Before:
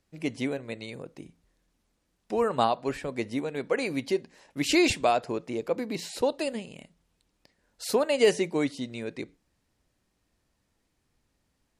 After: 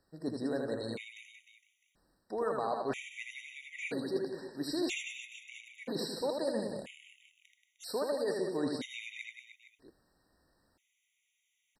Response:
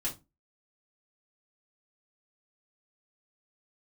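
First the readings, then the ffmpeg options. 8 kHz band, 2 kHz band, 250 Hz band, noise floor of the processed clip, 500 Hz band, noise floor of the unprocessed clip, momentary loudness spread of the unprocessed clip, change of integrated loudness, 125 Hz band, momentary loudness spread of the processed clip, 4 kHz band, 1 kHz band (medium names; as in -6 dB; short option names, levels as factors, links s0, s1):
-10.0 dB, -8.0 dB, -8.0 dB, -80 dBFS, -8.0 dB, -76 dBFS, 16 LU, -8.5 dB, -8.5 dB, 15 LU, -8.5 dB, -10.5 dB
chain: -af "bass=f=250:g=-6,treble=f=4000:g=-2,alimiter=limit=0.15:level=0:latency=1:release=258,areverse,acompressor=threshold=0.0158:ratio=5,areverse,aecho=1:1:80|180|305|461.2|656.6:0.631|0.398|0.251|0.158|0.1,afftfilt=real='re*gt(sin(2*PI*0.51*pts/sr)*(1-2*mod(floor(b*sr/1024/1900),2)),0)':imag='im*gt(sin(2*PI*0.51*pts/sr)*(1-2*mod(floor(b*sr/1024/1900),2)),0)':win_size=1024:overlap=0.75,volume=1.5"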